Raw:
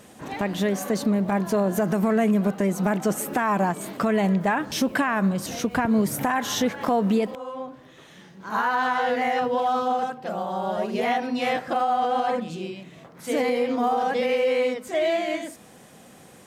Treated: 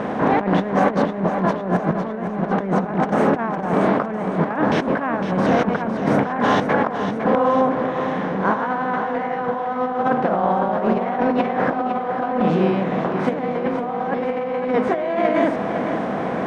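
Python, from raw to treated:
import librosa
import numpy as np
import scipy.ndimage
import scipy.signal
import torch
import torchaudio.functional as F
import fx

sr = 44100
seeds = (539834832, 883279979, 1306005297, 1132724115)

y = fx.bin_compress(x, sr, power=0.6)
y = scipy.signal.sosfilt(scipy.signal.butter(2, 1500.0, 'lowpass', fs=sr, output='sos'), y)
y = fx.low_shelf(y, sr, hz=68.0, db=-11.5)
y = fx.over_compress(y, sr, threshold_db=-25.0, ratio=-0.5)
y = fx.echo_feedback(y, sr, ms=507, feedback_pct=57, wet_db=-9)
y = y * 10.0 ** (5.5 / 20.0)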